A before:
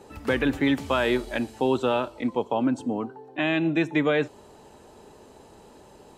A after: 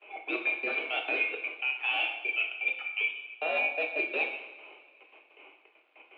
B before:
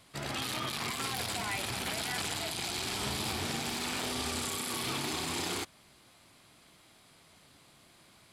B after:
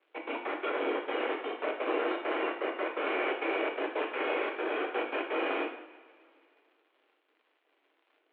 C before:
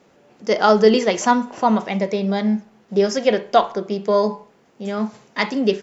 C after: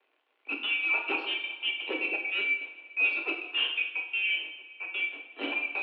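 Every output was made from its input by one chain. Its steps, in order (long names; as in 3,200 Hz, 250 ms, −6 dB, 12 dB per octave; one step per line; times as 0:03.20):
neighbouring bands swapped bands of 2,000 Hz
low-pass that shuts in the quiet parts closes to 1,500 Hz, open at −13 dBFS
noise gate with hold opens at −47 dBFS
tilt shelving filter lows +8 dB, about 780 Hz
reversed playback
downward compressor 16 to 1, threshold −34 dBFS
reversed playback
sine wavefolder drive 5 dB, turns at −23.5 dBFS
gate pattern "xx.x.x.xxxx.x" 167 BPM −60 dB
surface crackle 200 per second −52 dBFS
single-sideband voice off tune +130 Hz 180–3,100 Hz
coupled-rooms reverb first 0.73 s, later 2.6 s, from −18 dB, DRR 1.5 dB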